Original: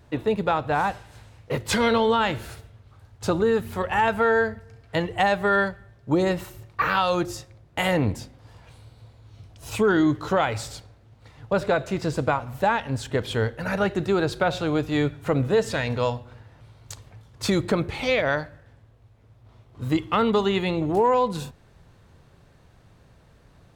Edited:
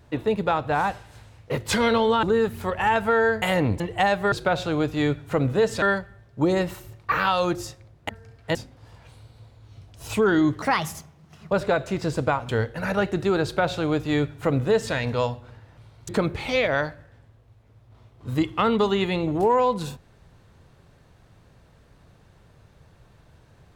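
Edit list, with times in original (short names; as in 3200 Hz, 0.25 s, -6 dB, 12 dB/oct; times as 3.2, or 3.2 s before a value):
2.23–3.35 cut
4.54–5 swap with 7.79–8.17
10.24–11.51 speed 143%
12.49–13.32 cut
14.27–15.77 copy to 5.52
16.92–17.63 cut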